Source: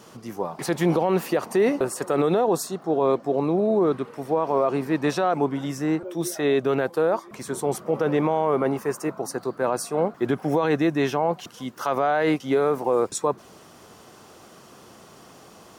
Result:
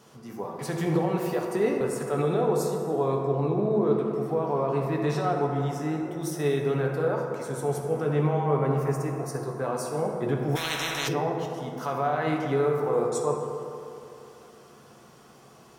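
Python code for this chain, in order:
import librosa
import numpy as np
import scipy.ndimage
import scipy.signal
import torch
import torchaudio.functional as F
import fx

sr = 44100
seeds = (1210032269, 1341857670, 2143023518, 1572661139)

y = fx.rev_fdn(x, sr, rt60_s=2.8, lf_ratio=1.0, hf_ratio=0.4, size_ms=41.0, drr_db=-0.5)
y = fx.dynamic_eq(y, sr, hz=110.0, q=1.6, threshold_db=-39.0, ratio=4.0, max_db=7)
y = fx.spectral_comp(y, sr, ratio=10.0, at=(10.55, 11.07), fade=0.02)
y = y * 10.0 ** (-8.0 / 20.0)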